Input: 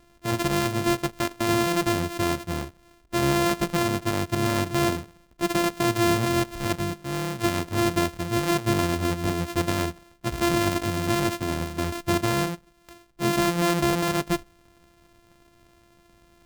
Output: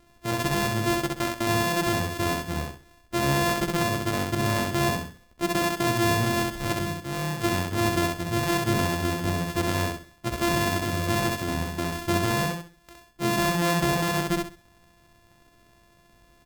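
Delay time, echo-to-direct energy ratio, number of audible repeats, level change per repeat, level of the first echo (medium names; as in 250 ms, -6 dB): 65 ms, -2.5 dB, 3, -11.0 dB, -3.0 dB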